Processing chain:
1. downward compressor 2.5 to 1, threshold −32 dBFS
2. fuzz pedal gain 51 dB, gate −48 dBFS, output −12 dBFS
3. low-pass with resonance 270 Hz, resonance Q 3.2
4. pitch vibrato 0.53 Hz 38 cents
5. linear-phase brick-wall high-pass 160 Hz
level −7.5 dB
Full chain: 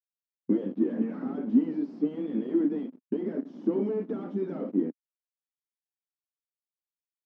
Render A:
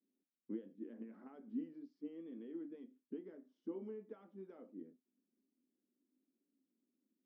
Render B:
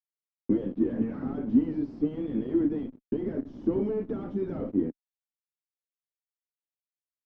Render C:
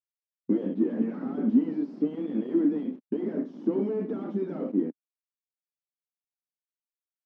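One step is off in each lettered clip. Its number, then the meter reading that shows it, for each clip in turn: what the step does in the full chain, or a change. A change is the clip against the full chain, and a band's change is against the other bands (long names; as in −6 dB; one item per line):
2, distortion level −2 dB
5, 125 Hz band +4.0 dB
1, average gain reduction 6.0 dB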